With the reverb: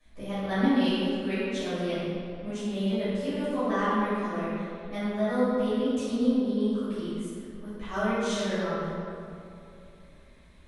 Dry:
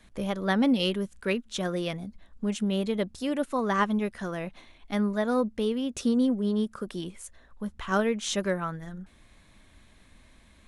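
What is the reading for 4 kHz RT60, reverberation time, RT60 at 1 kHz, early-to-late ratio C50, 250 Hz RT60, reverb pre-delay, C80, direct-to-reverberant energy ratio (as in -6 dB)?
1.6 s, 2.7 s, 2.6 s, -4.5 dB, 2.9 s, 5 ms, -2.5 dB, -15.0 dB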